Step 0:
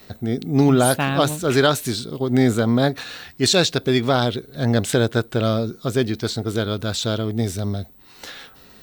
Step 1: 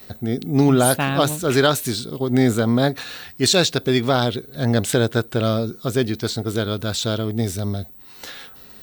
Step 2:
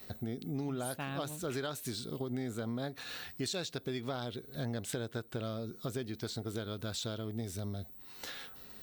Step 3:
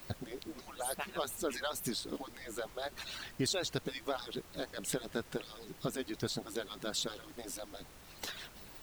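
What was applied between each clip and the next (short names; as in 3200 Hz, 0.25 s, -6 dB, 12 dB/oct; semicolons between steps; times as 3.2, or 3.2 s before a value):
high shelf 12000 Hz +7.5 dB
compressor 6:1, threshold -27 dBFS, peak gain reduction 15 dB; gain -8 dB
median-filter separation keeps percussive; added noise pink -59 dBFS; gain +3.5 dB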